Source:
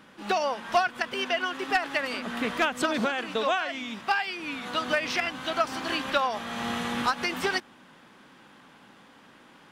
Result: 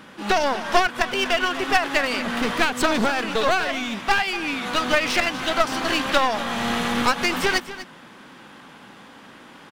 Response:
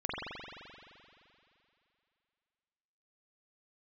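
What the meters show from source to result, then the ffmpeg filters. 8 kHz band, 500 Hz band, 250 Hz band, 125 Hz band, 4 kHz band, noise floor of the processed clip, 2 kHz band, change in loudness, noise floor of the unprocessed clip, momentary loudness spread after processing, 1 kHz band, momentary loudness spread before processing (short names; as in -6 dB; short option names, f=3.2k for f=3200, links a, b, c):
+9.0 dB, +6.0 dB, +7.0 dB, +8.0 dB, +7.0 dB, -46 dBFS, +6.5 dB, +6.5 dB, -54 dBFS, 4 LU, +5.5 dB, 5 LU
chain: -filter_complex "[0:a]aeval=exprs='clip(val(0),-1,0.0224)':c=same,asplit=2[a][b];[b]aecho=0:1:244:0.188[c];[a][c]amix=inputs=2:normalize=0,volume=8.5dB"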